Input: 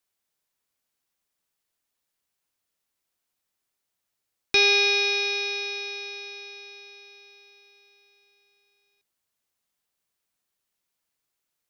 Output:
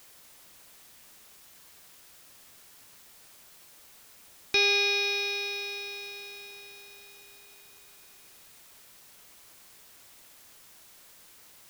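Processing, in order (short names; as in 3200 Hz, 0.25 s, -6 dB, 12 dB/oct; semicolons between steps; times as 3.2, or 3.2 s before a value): added noise white -50 dBFS; gain -4.5 dB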